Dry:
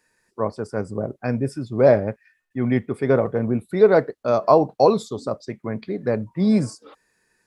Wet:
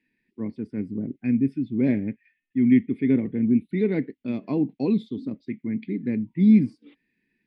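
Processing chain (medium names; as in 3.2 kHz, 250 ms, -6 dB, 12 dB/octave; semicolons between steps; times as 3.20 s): FFT filter 110 Hz 0 dB, 270 Hz +14 dB, 600 Hz -17 dB, 920 Hz -14 dB, 1.3 kHz -20 dB, 2.1 kHz +8 dB, 3.4 kHz +2 dB, 7 kHz -28 dB, 10 kHz -19 dB; trim -7.5 dB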